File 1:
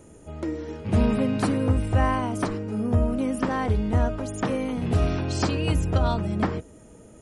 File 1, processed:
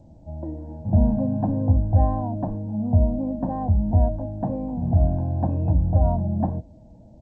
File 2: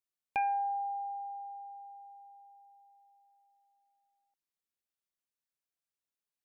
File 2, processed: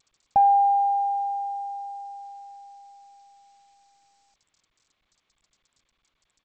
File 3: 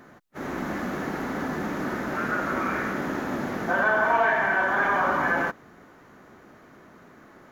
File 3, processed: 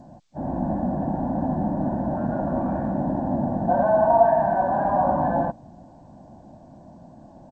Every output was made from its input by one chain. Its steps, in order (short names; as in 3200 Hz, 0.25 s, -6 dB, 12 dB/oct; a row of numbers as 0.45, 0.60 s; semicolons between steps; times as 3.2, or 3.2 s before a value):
Chebyshev low-pass 700 Hz, order 3; comb 1.2 ms, depth 99%; G.722 64 kbps 16000 Hz; match loudness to -23 LUFS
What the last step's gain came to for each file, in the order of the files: -1.0, +12.0, +5.5 dB